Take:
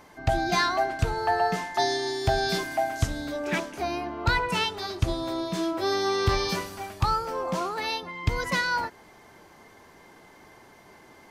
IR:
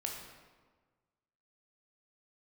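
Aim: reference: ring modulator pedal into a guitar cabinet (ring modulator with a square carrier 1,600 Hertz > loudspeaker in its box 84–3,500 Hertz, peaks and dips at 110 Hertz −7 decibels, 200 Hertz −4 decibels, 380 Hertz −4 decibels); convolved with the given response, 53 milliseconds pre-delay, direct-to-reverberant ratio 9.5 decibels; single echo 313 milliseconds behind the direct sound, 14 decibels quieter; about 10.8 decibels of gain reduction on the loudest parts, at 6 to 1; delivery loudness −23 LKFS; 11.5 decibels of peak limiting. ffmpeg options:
-filter_complex "[0:a]acompressor=threshold=-30dB:ratio=6,alimiter=level_in=4dB:limit=-24dB:level=0:latency=1,volume=-4dB,aecho=1:1:313:0.2,asplit=2[link_01][link_02];[1:a]atrim=start_sample=2205,adelay=53[link_03];[link_02][link_03]afir=irnorm=-1:irlink=0,volume=-10dB[link_04];[link_01][link_04]amix=inputs=2:normalize=0,aeval=exprs='val(0)*sgn(sin(2*PI*1600*n/s))':channel_layout=same,highpass=84,equalizer=frequency=110:width_type=q:width=4:gain=-7,equalizer=frequency=200:width_type=q:width=4:gain=-4,equalizer=frequency=380:width_type=q:width=4:gain=-4,lowpass=frequency=3500:width=0.5412,lowpass=frequency=3500:width=1.3066,volume=13dB"

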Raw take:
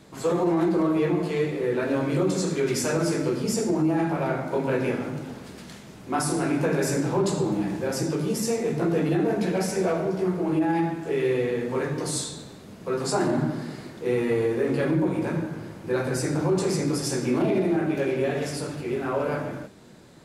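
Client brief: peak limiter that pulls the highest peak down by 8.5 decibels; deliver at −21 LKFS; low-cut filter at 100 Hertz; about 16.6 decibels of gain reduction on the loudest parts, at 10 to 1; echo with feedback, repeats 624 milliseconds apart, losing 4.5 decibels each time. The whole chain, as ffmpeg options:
ffmpeg -i in.wav -af "highpass=100,acompressor=threshold=-37dB:ratio=10,alimiter=level_in=12dB:limit=-24dB:level=0:latency=1,volume=-12dB,aecho=1:1:624|1248|1872|2496|3120|3744|4368|4992|5616:0.596|0.357|0.214|0.129|0.0772|0.0463|0.0278|0.0167|0.01,volume=21dB" out.wav

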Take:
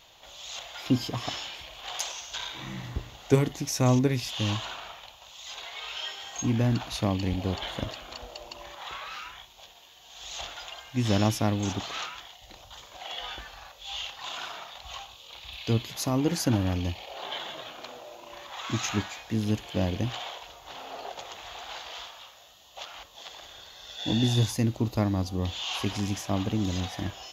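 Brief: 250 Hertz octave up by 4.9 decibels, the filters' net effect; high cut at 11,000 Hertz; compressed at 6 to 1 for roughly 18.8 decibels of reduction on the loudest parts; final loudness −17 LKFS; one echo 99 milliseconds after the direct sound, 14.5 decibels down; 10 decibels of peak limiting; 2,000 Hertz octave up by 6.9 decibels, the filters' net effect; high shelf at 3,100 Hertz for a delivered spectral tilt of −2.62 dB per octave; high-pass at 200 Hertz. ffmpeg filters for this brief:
ffmpeg -i in.wav -af "highpass=200,lowpass=11000,equalizer=frequency=250:width_type=o:gain=7.5,equalizer=frequency=2000:width_type=o:gain=7.5,highshelf=frequency=3100:gain=3.5,acompressor=threshold=-34dB:ratio=6,alimiter=level_in=4dB:limit=-24dB:level=0:latency=1,volume=-4dB,aecho=1:1:99:0.188,volume=21dB" out.wav

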